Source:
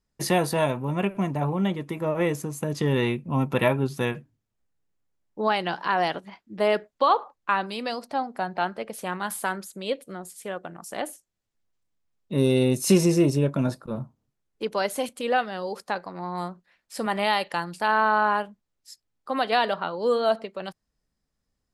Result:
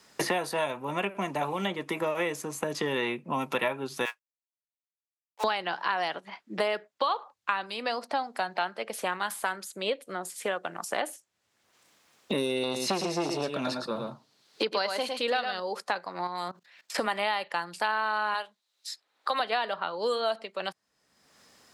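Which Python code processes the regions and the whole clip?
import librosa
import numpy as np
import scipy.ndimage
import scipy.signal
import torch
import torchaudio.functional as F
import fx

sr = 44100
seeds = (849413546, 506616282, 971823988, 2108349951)

y = fx.chain(x, sr, fx.highpass(hz=880.0, slope=24),
    fx.quant_companded(bits=4),
    fx.upward_expand(threshold_db=-53.0, expansion=2.5), at=(4.05, 5.44))
y = fx.chain(y, sr, fx.peak_eq(hz=4300.0, db=14.0, octaves=0.76),
    fx.echo_single(ms=109, db=-6.0),
    fx.transformer_sat(knee_hz=630.0), at=(12.63, 15.6))
y = fx.chain(y, sr, fx.level_steps(step_db=19),
    fx.peak_eq(hz=9800.0, db=-5.5, octaves=0.3), at=(16.27, 16.98))
y = fx.chain(y, sr, fx.highpass(hz=440.0, slope=12),
    fx.peak_eq(hz=3900.0, db=11.0, octaves=0.37), at=(18.34, 19.4))
y = fx.weighting(y, sr, curve='A')
y = fx.band_squash(y, sr, depth_pct=100)
y = y * 10.0 ** (-3.0 / 20.0)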